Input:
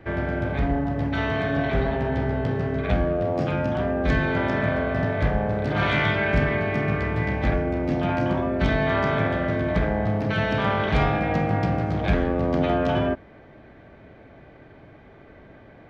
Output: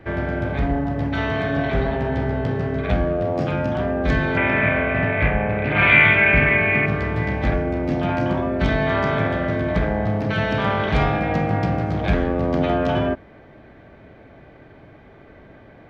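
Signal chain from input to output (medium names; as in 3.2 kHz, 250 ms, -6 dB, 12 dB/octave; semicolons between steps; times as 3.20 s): 4.37–6.86 s: resonant low-pass 2.4 kHz, resonance Q 5.6; trim +2 dB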